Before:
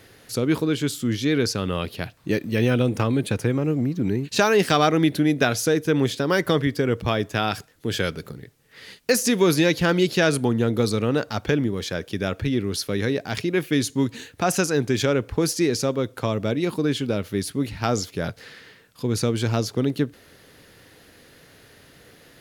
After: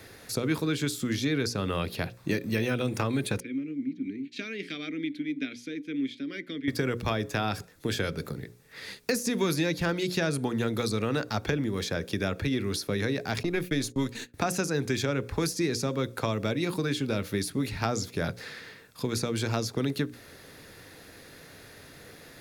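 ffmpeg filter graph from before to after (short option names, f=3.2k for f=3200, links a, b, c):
-filter_complex "[0:a]asettb=1/sr,asplit=3[a][b][c];[a]atrim=end=3.404[d];[b]atrim=start=3.4:end=6.68,asetpts=PTS-STARTPTS,afade=t=in:d=0.004:c=qsin,afade=t=out:st=3.276:d=0.004:c=qsin,asplit=3[e][f][g];[e]bandpass=f=270:t=q:w=8,volume=0dB[h];[f]bandpass=f=2.29k:t=q:w=8,volume=-6dB[i];[g]bandpass=f=3.01k:t=q:w=8,volume=-9dB[j];[h][i][j]amix=inputs=3:normalize=0,lowshelf=f=490:g=-6[k];[c]atrim=start=6.676[l];[d][k]acrossfade=d=0.004:c1=hsin:c2=qsin[m];[m][l]acrossfade=d=0.004:c1=qsin:c2=hsin,asettb=1/sr,asplit=3[n][o][p];[n]atrim=end=13.434[q];[o]atrim=start=13.43:end=14.34,asetpts=PTS-STARTPTS,afade=t=in:d=0.004:c=qsin,afade=t=out:st=0.906:d=0.004:c=qsin,aeval=exprs='if(lt(val(0),0),0.708*val(0),val(0))':c=same,agate=range=-22dB:threshold=-41dB:ratio=16:release=100:detection=peak[r];[p]atrim=start=14.336[s];[q][r]acrossfade=d=0.004:c1=hsin:c2=qsin[t];[t][s]acrossfade=d=0.004:c1=qsin:c2=hsin,bandreject=f=3k:w=9.5,acrossover=split=230|1100[u][v][w];[u]acompressor=threshold=-33dB:ratio=4[x];[v]acompressor=threshold=-32dB:ratio=4[y];[w]acompressor=threshold=-35dB:ratio=4[z];[x][y][z]amix=inputs=3:normalize=0,bandreject=f=60:t=h:w=6,bandreject=f=120:t=h:w=6,bandreject=f=180:t=h:w=6,bandreject=f=240:t=h:w=6,bandreject=f=300:t=h:w=6,bandreject=f=360:t=h:w=6,bandreject=f=420:t=h:w=6,bandreject=f=480:t=h:w=6,bandreject=f=540:t=h:w=6,volume=2dB"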